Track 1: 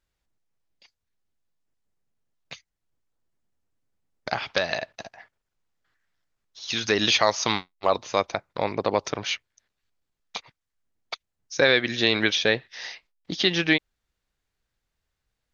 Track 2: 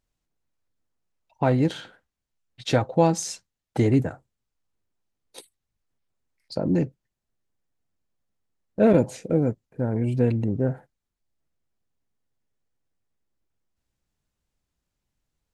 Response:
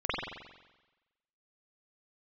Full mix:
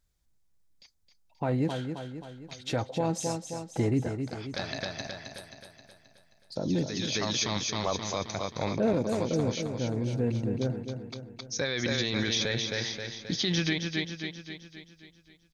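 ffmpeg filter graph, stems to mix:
-filter_complex "[0:a]bass=f=250:g=11,treble=f=4k:g=10,bandreject=f=2.8k:w=9.6,volume=-4.5dB,asplit=2[a][b];[b]volume=-9dB[c];[1:a]volume=-6dB,asplit=3[d][e][f];[e]volume=-8dB[g];[f]apad=whole_len=685027[h];[a][h]sidechaincompress=threshold=-42dB:ratio=8:attack=11:release=753[i];[c][g]amix=inputs=2:normalize=0,aecho=0:1:265|530|795|1060|1325|1590|1855|2120:1|0.53|0.281|0.149|0.0789|0.0418|0.0222|0.0117[j];[i][d][j]amix=inputs=3:normalize=0,alimiter=limit=-18dB:level=0:latency=1:release=21"

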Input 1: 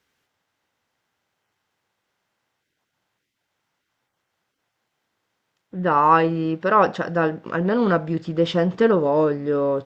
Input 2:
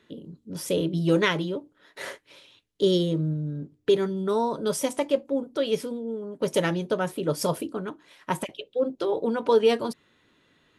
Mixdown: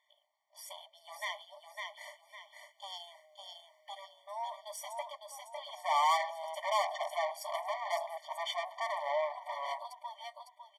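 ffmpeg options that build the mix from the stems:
-filter_complex "[0:a]highshelf=f=2.5k:g=-7,dynaudnorm=f=190:g=13:m=14dB,volume=-3.5dB,asplit=2[a][b];[1:a]volume=-8.5dB,asplit=2[c][d];[d]volume=-5dB[e];[b]apad=whole_len=475540[f];[c][f]sidechaincompress=threshold=-19dB:ratio=8:attack=9.4:release=249[g];[e]aecho=0:1:554|1108|1662|2216|2770:1|0.32|0.102|0.0328|0.0105[h];[a][g][h]amix=inputs=3:normalize=0,aeval=exprs='(tanh(15.8*val(0)+0.4)-tanh(0.4))/15.8':c=same,afftfilt=real='re*eq(mod(floor(b*sr/1024/600),2),1)':imag='im*eq(mod(floor(b*sr/1024/600),2),1)':win_size=1024:overlap=0.75"

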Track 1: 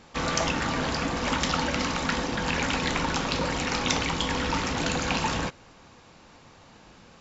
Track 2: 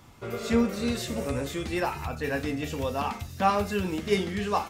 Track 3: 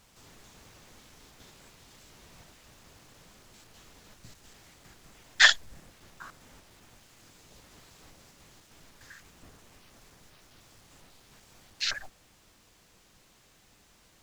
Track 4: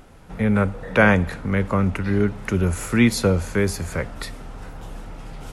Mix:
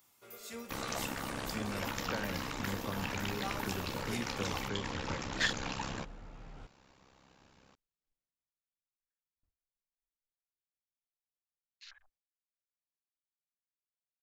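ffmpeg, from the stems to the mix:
-filter_complex "[0:a]aeval=exprs='val(0)*sin(2*PI*33*n/s)':c=same,adelay=550,volume=-9dB[a];[1:a]aemphasis=mode=production:type=riaa,volume=-18dB[b];[2:a]afwtdn=0.0112,agate=range=-15dB:threshold=-55dB:ratio=16:detection=peak,volume=-14dB,afade=t=out:st=8.21:d=0.42:silence=0.334965[c];[3:a]lowpass=3.3k,acompressor=threshold=-23dB:ratio=6,adelay=1150,volume=-14dB[d];[a][b][c][d]amix=inputs=4:normalize=0"

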